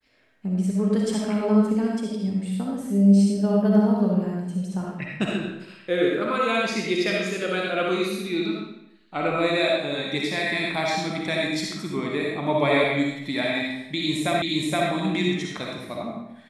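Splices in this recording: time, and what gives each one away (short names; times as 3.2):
14.42 repeat of the last 0.47 s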